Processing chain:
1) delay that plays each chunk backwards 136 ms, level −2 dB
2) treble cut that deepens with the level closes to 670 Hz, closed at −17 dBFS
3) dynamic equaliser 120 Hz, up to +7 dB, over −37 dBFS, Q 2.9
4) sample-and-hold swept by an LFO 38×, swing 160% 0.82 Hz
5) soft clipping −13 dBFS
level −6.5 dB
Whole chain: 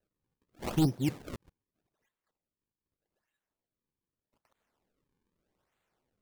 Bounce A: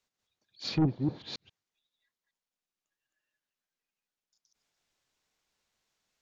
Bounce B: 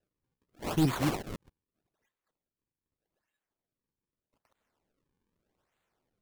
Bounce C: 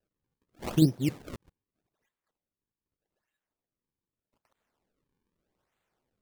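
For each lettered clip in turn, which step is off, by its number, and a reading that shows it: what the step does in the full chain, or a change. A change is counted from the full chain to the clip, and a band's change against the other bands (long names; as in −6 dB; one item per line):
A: 4, distortion level −10 dB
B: 2, 2 kHz band +4.0 dB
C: 5, distortion level −10 dB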